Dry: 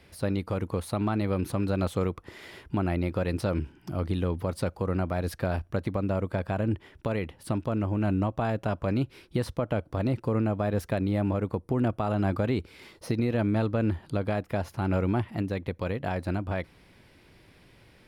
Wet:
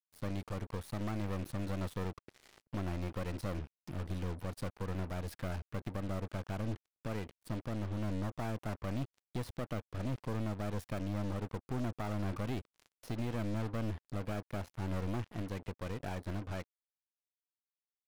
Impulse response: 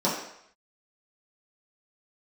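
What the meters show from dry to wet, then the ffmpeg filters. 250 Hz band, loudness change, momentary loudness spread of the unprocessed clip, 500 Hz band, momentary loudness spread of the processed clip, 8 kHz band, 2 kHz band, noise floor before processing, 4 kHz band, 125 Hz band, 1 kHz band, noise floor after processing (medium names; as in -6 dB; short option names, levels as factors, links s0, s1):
-11.0 dB, -10.5 dB, 6 LU, -12.5 dB, 5 LU, -6.5 dB, -9.5 dB, -57 dBFS, -7.0 dB, -9.0 dB, -10.5 dB, under -85 dBFS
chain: -af "aeval=exprs='(tanh(22.4*val(0)+0.75)-tanh(0.75))/22.4':c=same,acrusher=bits=6:mix=0:aa=0.5,volume=0.562"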